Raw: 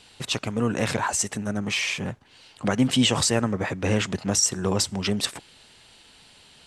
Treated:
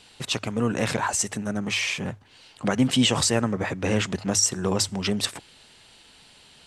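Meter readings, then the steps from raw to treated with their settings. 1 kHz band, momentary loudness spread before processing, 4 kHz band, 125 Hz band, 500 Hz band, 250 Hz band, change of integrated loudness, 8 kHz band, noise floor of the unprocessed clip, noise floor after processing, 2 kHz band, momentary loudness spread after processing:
0.0 dB, 9 LU, 0.0 dB, −1.0 dB, 0.0 dB, 0.0 dB, 0.0 dB, 0.0 dB, −53 dBFS, −53 dBFS, 0.0 dB, 9 LU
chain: mains-hum notches 50/100 Hz

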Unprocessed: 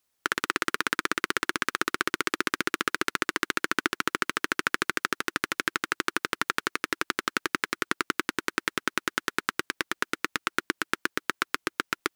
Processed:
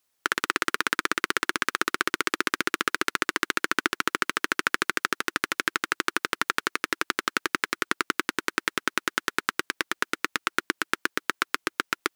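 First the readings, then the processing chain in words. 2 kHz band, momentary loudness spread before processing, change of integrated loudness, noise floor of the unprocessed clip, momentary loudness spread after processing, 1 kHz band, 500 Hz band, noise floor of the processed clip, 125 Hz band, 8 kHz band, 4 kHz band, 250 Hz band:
+2.0 dB, 3 LU, +2.0 dB, −77 dBFS, 3 LU, +2.0 dB, +0.5 dB, −75 dBFS, −1.5 dB, +2.0 dB, +2.0 dB, 0.0 dB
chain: low-shelf EQ 220 Hz −5.5 dB
level +2 dB

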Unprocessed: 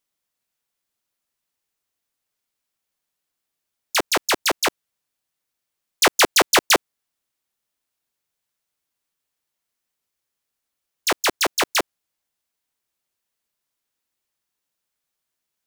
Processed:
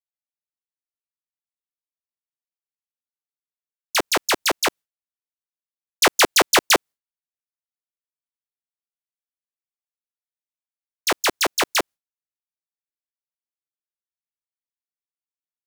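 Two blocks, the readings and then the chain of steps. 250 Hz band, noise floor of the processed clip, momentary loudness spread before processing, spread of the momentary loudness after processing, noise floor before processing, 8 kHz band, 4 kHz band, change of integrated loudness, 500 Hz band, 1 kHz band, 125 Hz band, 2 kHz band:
0.0 dB, below −85 dBFS, 9 LU, 9 LU, −82 dBFS, 0.0 dB, 0.0 dB, 0.0 dB, 0.0 dB, 0.0 dB, 0.0 dB, 0.0 dB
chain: downward expander −33 dBFS

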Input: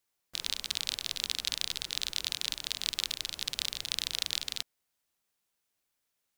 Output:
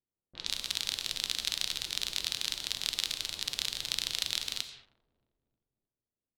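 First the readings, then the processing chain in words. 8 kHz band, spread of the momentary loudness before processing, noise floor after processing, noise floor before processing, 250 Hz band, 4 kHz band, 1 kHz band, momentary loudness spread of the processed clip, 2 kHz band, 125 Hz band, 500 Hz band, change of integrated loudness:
+0.5 dB, 4 LU, below −85 dBFS, −82 dBFS, +0.5 dB, +0.5 dB, +0.5 dB, 5 LU, +0.5 dB, +0.5 dB, +0.5 dB, +0.5 dB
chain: repeating echo 312 ms, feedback 58%, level −22 dB
reverb whose tail is shaped and stops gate 250 ms flat, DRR 9 dB
low-pass that shuts in the quiet parts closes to 380 Hz, open at −34.5 dBFS

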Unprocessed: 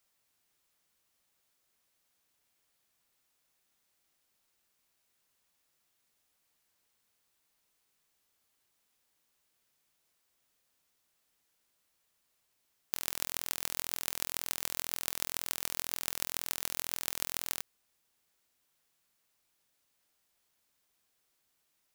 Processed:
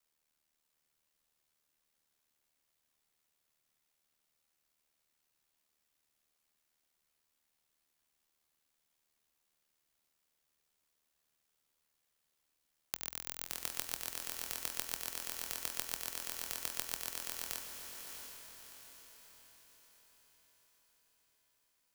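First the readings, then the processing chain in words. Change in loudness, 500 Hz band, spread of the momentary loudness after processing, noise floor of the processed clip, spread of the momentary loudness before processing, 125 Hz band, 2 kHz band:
−5.0 dB, −4.0 dB, 15 LU, −82 dBFS, 2 LU, −6.5 dB, −4.0 dB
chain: ring modulation 38 Hz
frequency shifter −64 Hz
on a send: feedback delay with all-pass diffusion 697 ms, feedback 47%, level −5.5 dB
on the sum: level −2.5 dB

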